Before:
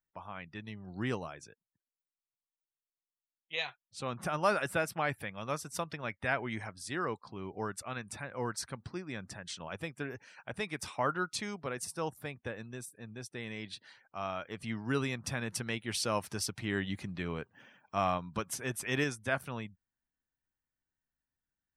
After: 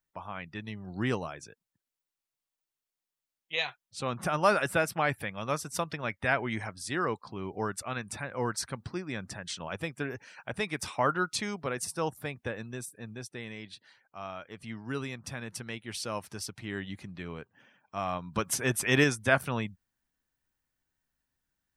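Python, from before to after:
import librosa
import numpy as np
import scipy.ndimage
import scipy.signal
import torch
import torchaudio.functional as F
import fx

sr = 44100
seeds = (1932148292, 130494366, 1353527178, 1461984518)

y = fx.gain(x, sr, db=fx.line((13.05, 4.5), (13.77, -3.0), (18.06, -3.0), (18.5, 8.0)))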